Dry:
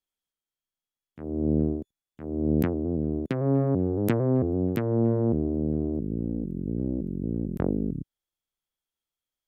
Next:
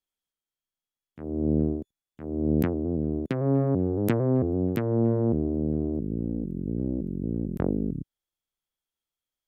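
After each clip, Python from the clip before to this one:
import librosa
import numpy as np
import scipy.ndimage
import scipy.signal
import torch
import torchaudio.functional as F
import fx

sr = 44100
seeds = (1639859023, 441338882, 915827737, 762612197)

y = x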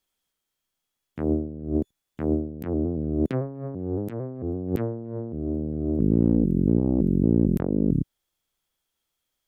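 y = fx.over_compress(x, sr, threshold_db=-30.0, ratio=-0.5)
y = y * 10.0 ** (6.0 / 20.0)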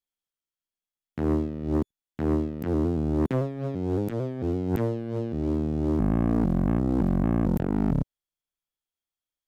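y = fx.leveller(x, sr, passes=3)
y = y * 10.0 ** (-8.5 / 20.0)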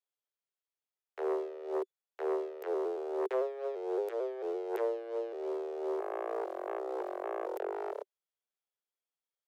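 y = scipy.signal.sosfilt(scipy.signal.butter(16, 380.0, 'highpass', fs=sr, output='sos'), x)
y = fx.tilt_eq(y, sr, slope=-2.0)
y = y * 10.0 ** (-2.5 / 20.0)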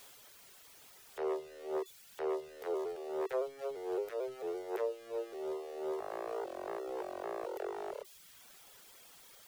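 y = x + 0.5 * 10.0 ** (-42.5 / 20.0) * np.sign(x)
y = fx.dereverb_blind(y, sr, rt60_s=0.85)
y = y * 10.0 ** (-2.5 / 20.0)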